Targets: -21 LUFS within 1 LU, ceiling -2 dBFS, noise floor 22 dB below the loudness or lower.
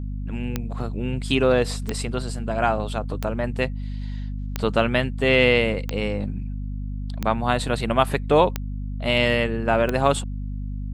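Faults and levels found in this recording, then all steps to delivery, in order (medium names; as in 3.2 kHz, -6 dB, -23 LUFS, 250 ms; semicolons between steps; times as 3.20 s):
clicks found 8; hum 50 Hz; highest harmonic 250 Hz; hum level -27 dBFS; loudness -23.5 LUFS; peak level -3.0 dBFS; loudness target -21.0 LUFS
-> de-click; de-hum 50 Hz, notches 5; trim +2.5 dB; peak limiter -2 dBFS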